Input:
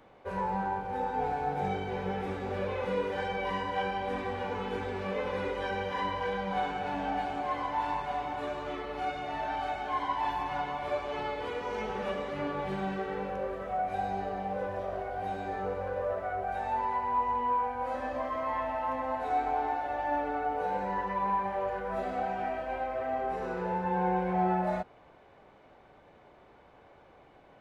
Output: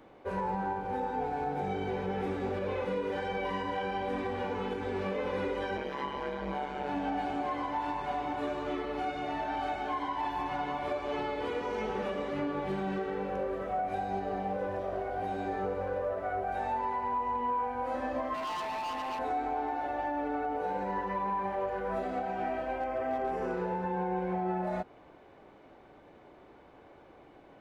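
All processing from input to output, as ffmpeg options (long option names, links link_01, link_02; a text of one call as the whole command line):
ffmpeg -i in.wav -filter_complex "[0:a]asettb=1/sr,asplit=3[link_01][link_02][link_03];[link_01]atrim=end=5.774[link_04];[link_02]atrim=start=5.77:end=6.89,asetpts=PTS-STARTPTS,afade=type=in:duration=0.004:curve=qsin,afade=type=out:start_time=1.116:duration=0.004:curve=qsin,tremolo=f=140:d=0.974,asplit=2[link_05][link_06];[link_06]adelay=16,volume=-5dB[link_07];[link_05][link_07]amix=inputs=2:normalize=0,atrim=end_sample=49392[link_08];[link_03]atrim=start=6.886[link_09];[link_04][link_08]acrossfade=duration=0.004:curve1=hsin:curve2=qsin[link_10];[link_10][link_09]acrossfade=duration=0.004:curve1=qsin:curve2=hsin,asettb=1/sr,asplit=3[link_11][link_12][link_13];[link_11]atrim=end=18.344[link_14];[link_12]atrim=start=18.34:end=19.19,asetpts=PTS-STARTPTS,afade=type=in:duration=0.004:curve=qsin,afade=type=out:start_time=0.846:duration=0.004:curve=qsin,highpass=frequency=460:poles=1,aecho=1:1:1.1:0.81,atrim=end_sample=37485,volume=34dB,asoftclip=hard,volume=-34dB[link_15];[link_13]atrim=start=19.186[link_16];[link_14][link_15]acrossfade=duration=0.004:curve1=hsin:curve2=qsin[link_17];[link_17][link_16]acrossfade=duration=0.004:curve1=qsin:curve2=hsin,asettb=1/sr,asplit=3[link_18][link_19][link_20];[link_18]atrim=end=22.774[link_21];[link_19]atrim=start=22.77:end=23.54,asetpts=PTS-STARTPTS,afade=type=in:duration=0.004:curve=qsin,afade=type=out:start_time=0.766:duration=0.004:curve=qsin,bandreject=frequency=3900:width=5.8,volume=25.5dB,asoftclip=hard,volume=-25.5dB[link_22];[link_20]atrim=start=23.536[link_23];[link_21][link_22]acrossfade=duration=0.004:curve1=hsin:curve2=qsin[link_24];[link_24][link_23]acrossfade=duration=0.004:curve1=qsin:curve2=hsin,equalizer=frequency=310:width_type=o:width=0.81:gain=7,alimiter=level_in=0.5dB:limit=-24dB:level=0:latency=1:release=137,volume=-0.5dB" out.wav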